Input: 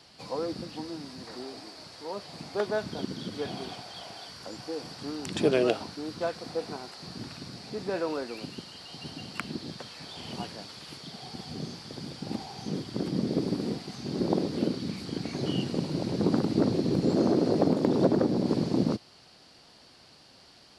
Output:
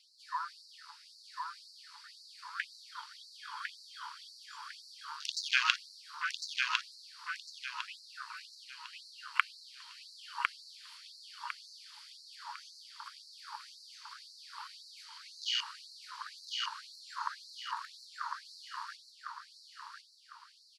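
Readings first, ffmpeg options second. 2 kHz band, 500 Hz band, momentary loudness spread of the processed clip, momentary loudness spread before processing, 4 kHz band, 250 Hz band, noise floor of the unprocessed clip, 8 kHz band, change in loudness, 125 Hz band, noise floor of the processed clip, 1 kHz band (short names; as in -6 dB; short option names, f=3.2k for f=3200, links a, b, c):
+5.5 dB, under -40 dB, 17 LU, 17 LU, +0.5 dB, under -40 dB, -56 dBFS, -2.0 dB, -8.5 dB, under -40 dB, -59 dBFS, -1.5 dB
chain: -af "afwtdn=0.01,aecho=1:1:1053|2106|3159|4212:0.631|0.202|0.0646|0.0207,afftfilt=real='re*gte(b*sr/1024,850*pow(4000/850,0.5+0.5*sin(2*PI*1.9*pts/sr)))':imag='im*gte(b*sr/1024,850*pow(4000/850,0.5+0.5*sin(2*PI*1.9*pts/sr)))':win_size=1024:overlap=0.75,volume=8.5dB"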